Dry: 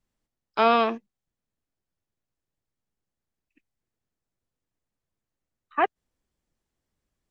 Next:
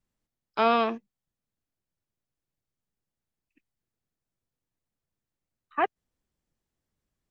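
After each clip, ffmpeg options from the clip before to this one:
-af "equalizer=f=140:w=0.99:g=3,volume=-3dB"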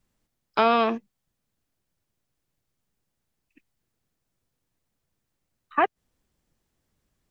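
-af "acompressor=threshold=-29dB:ratio=2,volume=8.5dB"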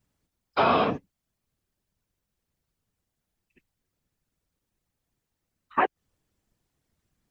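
-af "afftfilt=real='hypot(re,im)*cos(2*PI*random(0))':imag='hypot(re,im)*sin(2*PI*random(1))':win_size=512:overlap=0.75,volume=4.5dB"

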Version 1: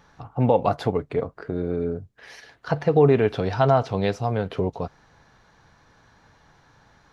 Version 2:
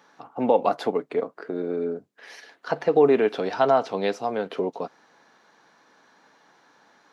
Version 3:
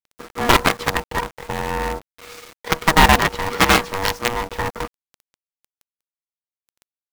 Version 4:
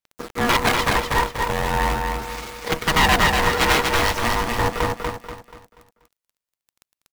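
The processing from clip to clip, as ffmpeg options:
-af "highpass=f=230:w=0.5412,highpass=f=230:w=1.3066"
-af "acrusher=bits=5:dc=4:mix=0:aa=0.000001,aeval=exprs='val(0)*sin(2*PI*480*n/s)':c=same,aeval=exprs='0.398*(cos(1*acos(clip(val(0)/0.398,-1,1)))-cos(1*PI/2))+0.158*(cos(7*acos(clip(val(0)/0.398,-1,1)))-cos(7*PI/2))':c=same,volume=6.5dB"
-filter_complex "[0:a]asoftclip=type=tanh:threshold=-15dB,aphaser=in_gain=1:out_gain=1:delay=2.1:decay=0.27:speed=0.41:type=sinusoidal,asplit=2[a][b];[b]aecho=0:1:241|482|723|964|1205:0.668|0.254|0.0965|0.0367|0.0139[c];[a][c]amix=inputs=2:normalize=0,volume=3dB"

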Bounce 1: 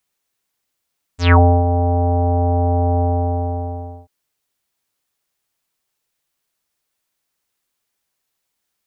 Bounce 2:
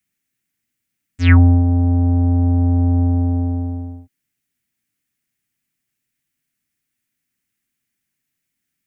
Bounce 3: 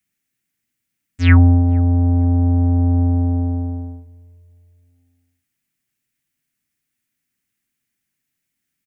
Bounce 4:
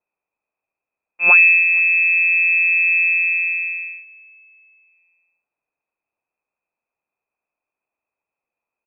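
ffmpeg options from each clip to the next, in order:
-filter_complex "[0:a]equalizer=f=125:t=o:w=1:g=7,equalizer=f=250:t=o:w=1:g=10,equalizer=f=500:t=o:w=1:g=-10,equalizer=f=1k:t=o:w=1:g=-11,equalizer=f=2k:t=o:w=1:g=7,equalizer=f=4k:t=o:w=1:g=-6,acrossover=split=260|730[a][b][c];[b]alimiter=limit=-23dB:level=0:latency=1[d];[a][d][c]amix=inputs=3:normalize=0,volume=-1.5dB"
-filter_complex "[0:a]asplit=2[a][b];[b]adelay=460,lowpass=f=910:p=1,volume=-23dB,asplit=2[c][d];[d]adelay=460,lowpass=f=910:p=1,volume=0.43,asplit=2[e][f];[f]adelay=460,lowpass=f=910:p=1,volume=0.43[g];[a][c][e][g]amix=inputs=4:normalize=0"
-af "lowpass=f=2.3k:t=q:w=0.5098,lowpass=f=2.3k:t=q:w=0.6013,lowpass=f=2.3k:t=q:w=0.9,lowpass=f=2.3k:t=q:w=2.563,afreqshift=-2700,volume=-1.5dB"

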